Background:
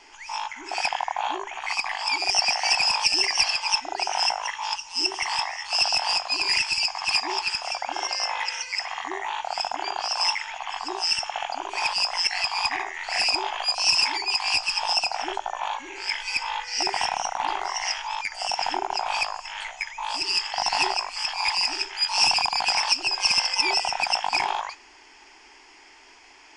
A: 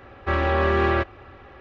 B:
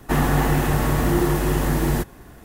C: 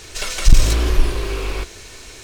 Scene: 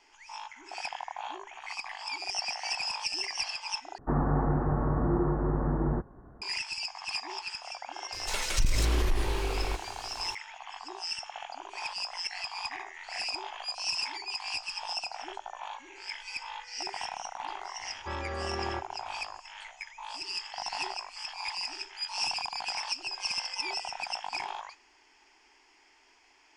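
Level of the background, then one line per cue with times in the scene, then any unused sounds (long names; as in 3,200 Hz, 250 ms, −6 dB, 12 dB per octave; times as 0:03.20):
background −11.5 dB
0:03.98: overwrite with B −7.5 dB + Butterworth low-pass 1,400 Hz
0:08.12: mix in C −7.5 dB + downward compressor, threshold −13 dBFS
0:17.79: mix in A −15 dB + every ending faded ahead of time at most 440 dB per second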